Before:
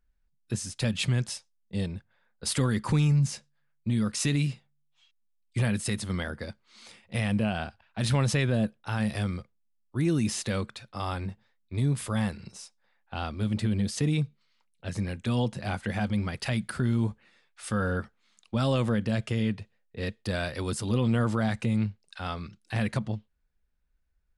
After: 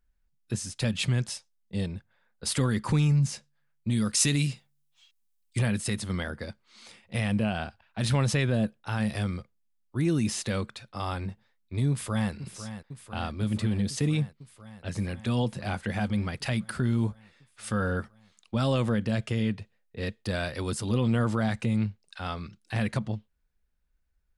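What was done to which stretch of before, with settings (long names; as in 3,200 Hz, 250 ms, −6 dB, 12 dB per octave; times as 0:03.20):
0:03.90–0:05.59: high-shelf EQ 4,100 Hz +10 dB
0:11.90–0:12.32: delay throw 500 ms, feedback 80%, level −11.5 dB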